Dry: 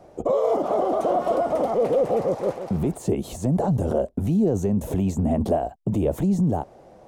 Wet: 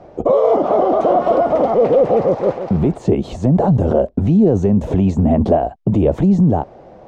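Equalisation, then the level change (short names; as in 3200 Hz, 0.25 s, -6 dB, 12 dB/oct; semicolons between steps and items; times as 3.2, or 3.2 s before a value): air absorption 160 m; +8.5 dB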